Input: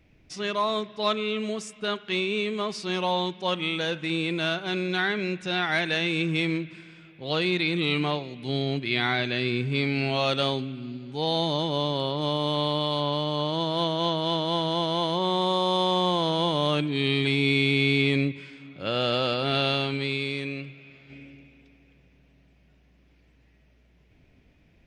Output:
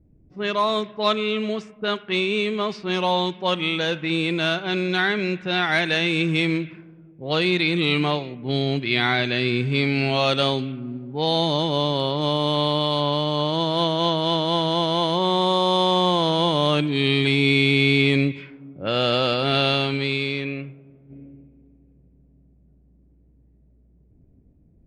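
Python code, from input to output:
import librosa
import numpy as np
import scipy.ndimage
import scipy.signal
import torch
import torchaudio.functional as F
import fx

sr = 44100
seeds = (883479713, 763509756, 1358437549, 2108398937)

y = fx.env_lowpass(x, sr, base_hz=330.0, full_db=-22.5)
y = F.gain(torch.from_numpy(y), 4.5).numpy()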